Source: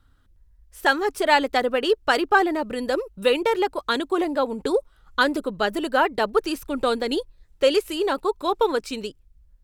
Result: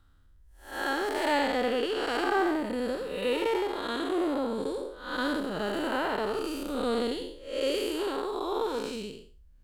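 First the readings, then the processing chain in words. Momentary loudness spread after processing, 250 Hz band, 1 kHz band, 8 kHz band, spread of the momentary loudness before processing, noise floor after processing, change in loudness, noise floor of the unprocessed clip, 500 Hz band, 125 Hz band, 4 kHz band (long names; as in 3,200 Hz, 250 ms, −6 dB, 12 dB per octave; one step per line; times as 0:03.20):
8 LU, −4.5 dB, −8.5 dB, −5.5 dB, 7 LU, −56 dBFS, −7.0 dB, −58 dBFS, −7.0 dB, can't be measured, −7.0 dB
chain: spectrum smeared in time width 246 ms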